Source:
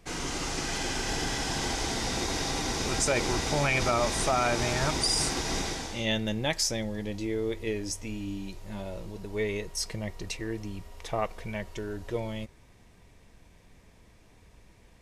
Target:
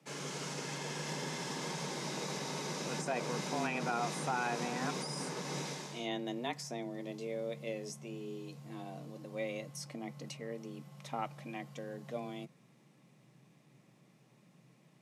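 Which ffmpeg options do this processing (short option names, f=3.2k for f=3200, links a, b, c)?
-filter_complex "[0:a]acrossover=split=1800[a][b];[b]alimiter=level_in=2dB:limit=-24dB:level=0:latency=1:release=475,volume=-2dB[c];[a][c]amix=inputs=2:normalize=0,afreqshift=120,volume=-8.5dB"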